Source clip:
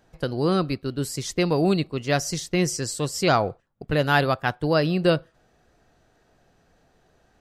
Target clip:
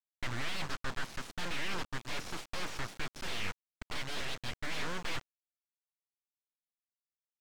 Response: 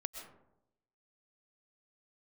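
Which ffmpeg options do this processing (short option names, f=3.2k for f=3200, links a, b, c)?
-filter_complex "[0:a]afwtdn=0.02,agate=range=-33dB:threshold=-40dB:ratio=3:detection=peak,aeval=exprs='0.501*(cos(1*acos(clip(val(0)/0.501,-1,1)))-cos(1*PI/2))+0.2*(cos(6*acos(clip(val(0)/0.501,-1,1)))-cos(6*PI/2))+0.126*(cos(7*acos(clip(val(0)/0.501,-1,1)))-cos(7*PI/2))':c=same,highpass=1.2k,areverse,acompressor=threshold=-37dB:ratio=8,areverse,asplit=2[a][b];[b]highpass=f=720:p=1,volume=35dB,asoftclip=type=tanh:threshold=-25dB[c];[a][c]amix=inputs=2:normalize=0,lowpass=f=1.7k:p=1,volume=-6dB,aemphasis=mode=reproduction:type=75kf,aresample=16000,acrusher=bits=7:mix=0:aa=0.000001,aresample=44100,aeval=exprs='abs(val(0))':c=same,volume=2dB"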